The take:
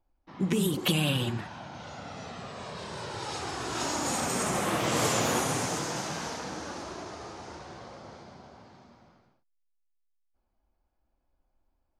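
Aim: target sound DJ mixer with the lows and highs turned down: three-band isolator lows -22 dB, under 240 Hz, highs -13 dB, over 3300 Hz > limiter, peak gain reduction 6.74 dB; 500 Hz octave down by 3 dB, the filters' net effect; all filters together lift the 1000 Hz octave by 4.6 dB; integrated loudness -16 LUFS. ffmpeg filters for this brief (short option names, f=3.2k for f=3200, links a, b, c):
-filter_complex "[0:a]acrossover=split=240 3300:gain=0.0794 1 0.224[a][b][c];[a][b][c]amix=inputs=3:normalize=0,equalizer=f=500:t=o:g=-5.5,equalizer=f=1k:t=o:g=7.5,volume=18dB,alimiter=limit=-4dB:level=0:latency=1"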